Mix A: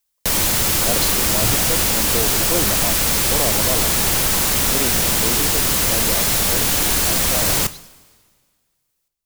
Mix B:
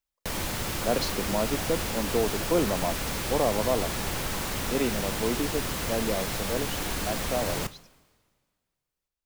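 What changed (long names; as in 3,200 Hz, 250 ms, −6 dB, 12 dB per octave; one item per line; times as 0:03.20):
first sound −8.5 dB
second sound: muted
master: add high-shelf EQ 4,200 Hz −11 dB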